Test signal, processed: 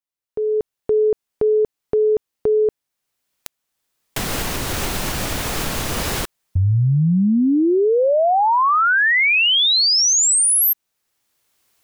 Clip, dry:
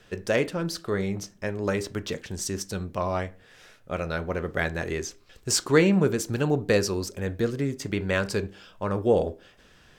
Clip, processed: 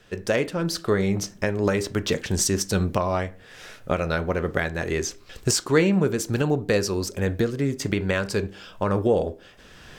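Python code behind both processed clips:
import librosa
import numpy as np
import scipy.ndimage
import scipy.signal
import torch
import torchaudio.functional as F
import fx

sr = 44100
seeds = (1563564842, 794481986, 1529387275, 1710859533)

y = fx.recorder_agc(x, sr, target_db=-12.5, rise_db_per_s=14.0, max_gain_db=30)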